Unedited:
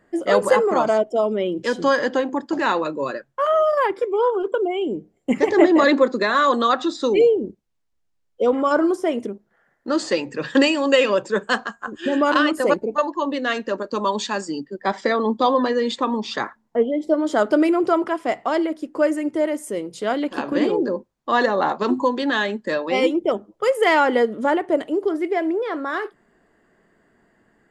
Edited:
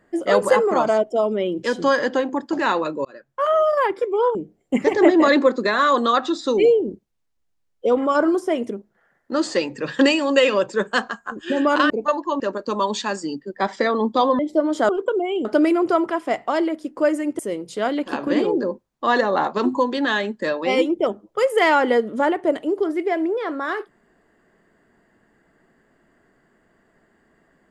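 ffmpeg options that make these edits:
-filter_complex "[0:a]asplit=9[a][b][c][d][e][f][g][h][i];[a]atrim=end=3.05,asetpts=PTS-STARTPTS,afade=t=out:st=3.046:d=0.004:c=hsin[j];[b]atrim=start=3.05:end=4.352,asetpts=PTS-STARTPTS,afade=t=in:d=0.39[k];[c]atrim=start=4.908:end=12.462[l];[d]atrim=start=12.798:end=13.302[m];[e]atrim=start=13.648:end=15.642[n];[f]atrim=start=16.928:end=17.432[o];[g]atrim=start=4.348:end=4.912[p];[h]atrim=start=17.428:end=19.372[q];[i]atrim=start=19.638[r];[j][k]concat=n=2:v=0:a=1[s];[s][l]acrossfade=d=0.004:c1=hsin:c2=hsin[t];[t][m]acrossfade=d=0.004:c1=hsin:c2=hsin[u];[u][n]acrossfade=d=0.004:c1=hsin:c2=hsin[v];[v][o]acrossfade=d=0.004:c1=hsin:c2=hsin[w];[w][p]acrossfade=d=0.004:c1=hsin:c2=hsin[x];[x][q]acrossfade=d=0.004:c1=hsin:c2=hsin[y];[y][r]acrossfade=d=0.004:c1=hsin:c2=hsin"

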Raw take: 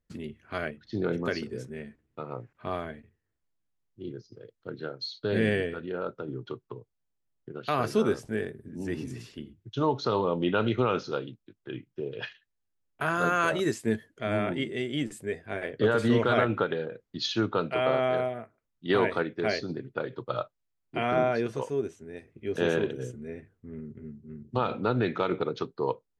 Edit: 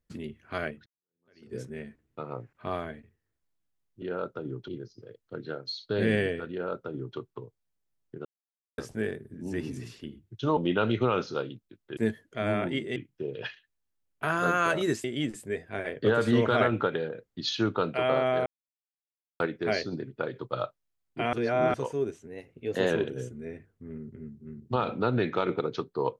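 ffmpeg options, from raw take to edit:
-filter_complex "[0:a]asplit=16[a][b][c][d][e][f][g][h][i][j][k][l][m][n][o][p];[a]atrim=end=0.86,asetpts=PTS-STARTPTS,afade=t=out:st=0.856:d=0.004:c=hsin[q];[b]atrim=start=0.86:end=4.022,asetpts=PTS-STARTPTS,afade=t=in:d=0.69:c=exp[r];[c]atrim=start=5.848:end=6.512[s];[d]atrim=start=4.018:end=7.59,asetpts=PTS-STARTPTS,afade=t=out:st=3.568:d=0.004:c=hsin[t];[e]atrim=start=7.59:end=8.12,asetpts=PTS-STARTPTS,volume=0[u];[f]atrim=start=8.12:end=9.912,asetpts=PTS-STARTPTS,afade=t=in:d=0.004:c=hsin[v];[g]atrim=start=10.338:end=11.742[w];[h]atrim=start=13.818:end=14.812[x];[i]atrim=start=11.738:end=13.822[y];[j]atrim=start=14.808:end=18.23,asetpts=PTS-STARTPTS,afade=t=out:st=3.418:d=0.004:c=hsin[z];[k]atrim=start=18.23:end=19.17,asetpts=PTS-STARTPTS,volume=0[aa];[l]atrim=start=19.17:end=21.102,asetpts=PTS-STARTPTS,afade=t=in:d=0.004:c=hsin[ab];[m]atrim=start=21.098:end=21.512,asetpts=PTS-STARTPTS,areverse[ac];[n]atrim=start=21.508:end=22.044[ad];[o]atrim=start=22.04:end=22.73,asetpts=PTS-STARTPTS,asetrate=48069,aresample=44100[ae];[p]atrim=start=22.726[af];[q][r]concat=n=2:v=0:a=1[ag];[ag][s]acrossfade=d=0.004:c1=hsin:c2=hsin[ah];[t][u][v]concat=n=3:v=0:a=1[ai];[ah][ai]acrossfade=d=0.004:c1=hsin:c2=hsin[aj];[aj][w]acrossfade=d=0.004:c1=hsin:c2=hsin[ak];[ak][x]acrossfade=d=0.004:c1=hsin:c2=hsin[al];[al][y]acrossfade=d=0.004:c1=hsin:c2=hsin[am];[z][aa][ab]concat=n=3:v=0:a=1[an];[am][an]acrossfade=d=0.004:c1=hsin:c2=hsin[ao];[ao][ac]acrossfade=d=0.004:c1=hsin:c2=hsin[ap];[ap][ad]acrossfade=d=0.004:c1=hsin:c2=hsin[aq];[aq][ae]acrossfade=d=0.004:c1=hsin:c2=hsin[ar];[ar][af]acrossfade=d=0.004:c1=hsin:c2=hsin"

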